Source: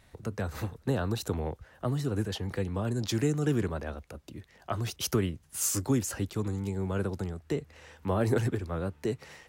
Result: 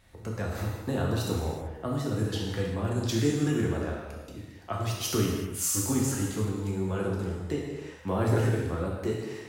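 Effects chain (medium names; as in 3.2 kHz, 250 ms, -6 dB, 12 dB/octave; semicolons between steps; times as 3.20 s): gated-style reverb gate 410 ms falling, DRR -3 dB; trim -2.5 dB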